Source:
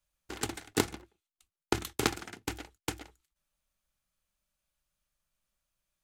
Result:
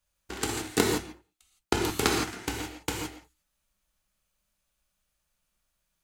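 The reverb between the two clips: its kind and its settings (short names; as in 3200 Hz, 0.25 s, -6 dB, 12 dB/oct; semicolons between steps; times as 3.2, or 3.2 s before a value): non-linear reverb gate 0.19 s flat, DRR -0.5 dB; gain +2.5 dB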